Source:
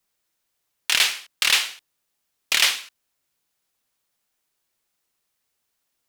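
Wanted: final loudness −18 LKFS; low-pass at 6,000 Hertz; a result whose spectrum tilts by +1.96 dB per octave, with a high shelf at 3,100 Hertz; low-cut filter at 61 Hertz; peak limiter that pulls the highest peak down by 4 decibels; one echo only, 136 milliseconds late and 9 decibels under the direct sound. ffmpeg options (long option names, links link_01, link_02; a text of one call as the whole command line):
ffmpeg -i in.wav -af "highpass=61,lowpass=6000,highshelf=frequency=3100:gain=-6.5,alimiter=limit=-10.5dB:level=0:latency=1,aecho=1:1:136:0.355,volume=7dB" out.wav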